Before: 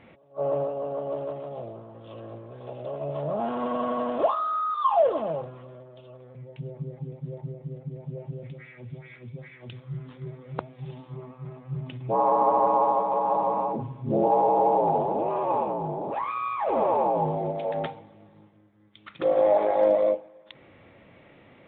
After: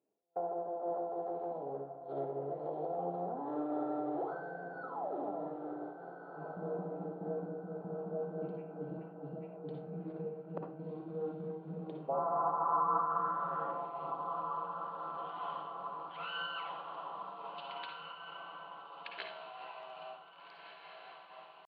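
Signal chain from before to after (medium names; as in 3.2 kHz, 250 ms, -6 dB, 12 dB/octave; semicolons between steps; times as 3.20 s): gate -42 dBFS, range -32 dB; dynamic bell 1.8 kHz, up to -6 dB, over -53 dBFS, Q 5.1; compression 8:1, threshold -36 dBFS, peak gain reduction 19 dB; pitch shift +3.5 st; band-pass sweep 420 Hz -> 2.9 kHz, 11.65–14.14 s; echo that smears into a reverb 1650 ms, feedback 52%, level -7 dB; on a send at -3 dB: reverberation RT60 0.35 s, pre-delay 47 ms; on the sum: random flutter of the level, depth 55%; trim +9.5 dB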